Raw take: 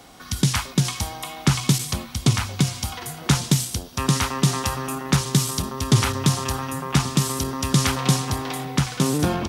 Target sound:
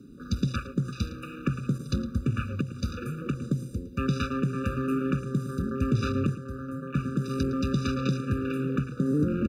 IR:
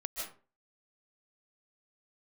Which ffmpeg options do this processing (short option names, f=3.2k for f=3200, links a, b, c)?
-filter_complex "[0:a]asplit=2[a][b];[b]acrusher=samples=10:mix=1:aa=0.000001:lfo=1:lforange=10:lforate=0.68,volume=-7.5dB[c];[a][c]amix=inputs=2:normalize=0,asettb=1/sr,asplit=3[d][e][f];[d]atrim=end=6.274[g];[e]atrim=start=6.27:end=7.02,asetpts=PTS-STARTPTS,afade=t=in:d=0.004:c=qsin,afade=t=out:st=0.746:d=0.004:c=qsin,agate=range=-9dB:threshold=-17dB:ratio=16:detection=peak[h];[f]atrim=start=7.016[i];[g][h]acrossfade=d=0.004:c1=hsin:c2=qsin[j];[j][i]acrossfade=d=0.004:c1=qsin:c2=hsin,equalizer=f=230:t=o:w=0.67:g=6.5,asettb=1/sr,asplit=3[k][l][m];[k]atrim=end=2.464[n];[l]atrim=start=2.46:end=3.42,asetpts=PTS-STARTPTS,afade=t=in:d=0.004:c=qsin,afade=t=out:st=0.956:d=0.004:c=qsin,acompressor=threshold=-17dB:ratio=6[o];[m]atrim=start=3.416[p];[n][o]acrossfade=d=0.004:c1=hsin:c2=qsin[q];[q][p]acrossfade=d=0.004:c1=qsin:c2=hsin,alimiter=limit=-13.5dB:level=0:latency=1:release=411,afwtdn=0.0141,asplit=2[r][s];[s]adelay=110.8,volume=-14dB,highshelf=f=4k:g=-2.49[t];[r][t]amix=inputs=2:normalize=0,afftfilt=real='re*eq(mod(floor(b*sr/1024/580),2),0)':imag='im*eq(mod(floor(b*sr/1024/580),2),0)':win_size=1024:overlap=0.75,volume=-1dB"